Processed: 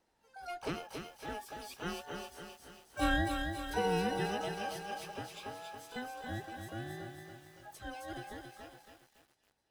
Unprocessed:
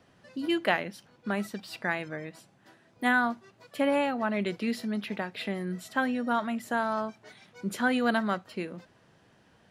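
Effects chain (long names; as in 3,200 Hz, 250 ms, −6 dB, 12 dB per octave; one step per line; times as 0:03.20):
frequency inversion band by band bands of 1,000 Hz
source passing by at 0:03.15, 5 m/s, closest 5.6 metres
parametric band 1,300 Hz −10 dB 2.9 octaves
on a send: delay with a high-pass on its return 265 ms, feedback 48%, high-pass 3,100 Hz, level −3.5 dB
on the sum: pitch-shifted copies added +12 semitones −8 dB
feedback echo at a low word length 280 ms, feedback 55%, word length 10 bits, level −6 dB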